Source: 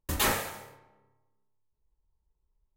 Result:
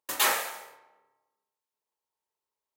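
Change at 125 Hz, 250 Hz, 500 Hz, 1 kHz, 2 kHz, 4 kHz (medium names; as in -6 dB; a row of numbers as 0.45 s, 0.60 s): under -25 dB, -10.5 dB, -1.5 dB, +2.5 dB, +3.0 dB, +3.0 dB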